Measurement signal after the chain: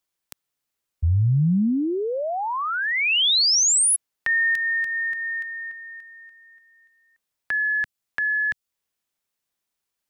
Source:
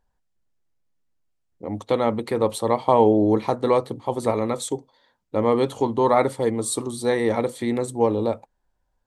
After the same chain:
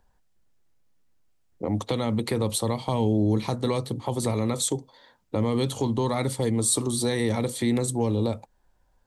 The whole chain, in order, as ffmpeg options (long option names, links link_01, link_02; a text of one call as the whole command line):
ffmpeg -i in.wav -filter_complex "[0:a]acrossover=split=200|3000[link_01][link_02][link_03];[link_02]acompressor=threshold=-33dB:ratio=6[link_04];[link_01][link_04][link_03]amix=inputs=3:normalize=0,asplit=2[link_05][link_06];[link_06]alimiter=limit=-24dB:level=0:latency=1:release=40,volume=2dB[link_07];[link_05][link_07]amix=inputs=2:normalize=0" out.wav